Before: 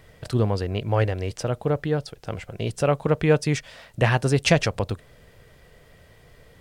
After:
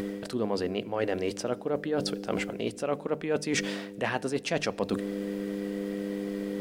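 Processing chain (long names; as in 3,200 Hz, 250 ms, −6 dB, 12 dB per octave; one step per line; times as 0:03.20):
hum with harmonics 100 Hz, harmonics 5, −39 dBFS −5 dB per octave
low shelf with overshoot 160 Hz −12.5 dB, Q 1.5
reversed playback
downward compressor 12 to 1, threshold −34 dBFS, peak gain reduction 22 dB
reversed playback
mains-hum notches 50/100/150 Hz
upward compression, threshold −41 dBFS
on a send: convolution reverb RT60 1.0 s, pre-delay 3 ms, DRR 19 dB
on the sum: level +8.5 dB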